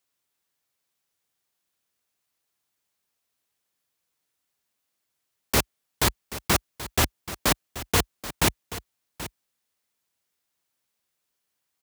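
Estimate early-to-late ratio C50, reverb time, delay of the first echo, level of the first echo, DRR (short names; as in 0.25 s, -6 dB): none, none, 0.781 s, -14.0 dB, none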